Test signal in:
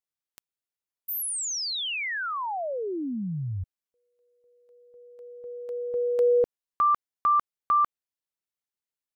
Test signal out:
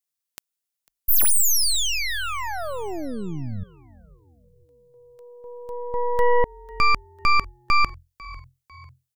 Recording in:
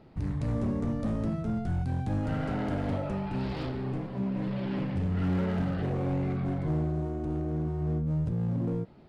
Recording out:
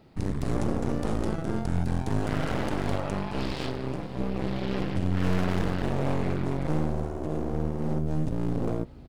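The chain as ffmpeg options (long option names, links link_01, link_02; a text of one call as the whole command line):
ffmpeg -i in.wav -filter_complex "[0:a]highshelf=frequency=3700:gain=11,aeval=exprs='0.266*(cos(1*acos(clip(val(0)/0.266,-1,1)))-cos(1*PI/2))+0.0106*(cos(3*acos(clip(val(0)/0.266,-1,1)))-cos(3*PI/2))+0.0944*(cos(6*acos(clip(val(0)/0.266,-1,1)))-cos(6*PI/2))':channel_layout=same,asplit=4[link_01][link_02][link_03][link_04];[link_02]adelay=498,afreqshift=-43,volume=-21dB[link_05];[link_03]adelay=996,afreqshift=-86,volume=-28.3dB[link_06];[link_04]adelay=1494,afreqshift=-129,volume=-35.7dB[link_07];[link_01][link_05][link_06][link_07]amix=inputs=4:normalize=0" out.wav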